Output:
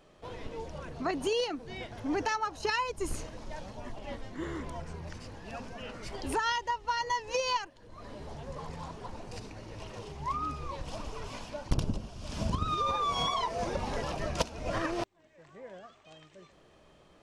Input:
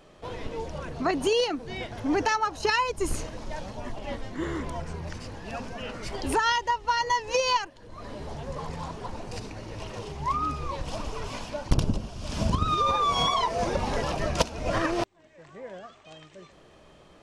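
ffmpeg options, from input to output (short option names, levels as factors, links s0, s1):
-af "volume=0.501"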